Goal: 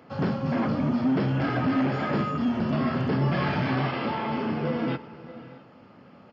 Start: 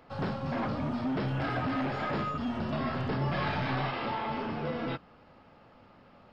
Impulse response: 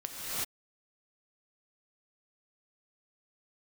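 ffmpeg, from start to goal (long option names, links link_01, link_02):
-filter_complex "[0:a]lowshelf=frequency=330:gain=9,asplit=2[link_01][link_02];[1:a]atrim=start_sample=2205,asetrate=29988,aresample=44100,adelay=102[link_03];[link_02][link_03]afir=irnorm=-1:irlink=0,volume=-24dB[link_04];[link_01][link_04]amix=inputs=2:normalize=0,aresample=16000,aresample=44100,highpass=160,equalizer=frequency=790:width=1.5:gain=-2.5,bandreject=frequency=3800:width=9.4,volume=3.5dB"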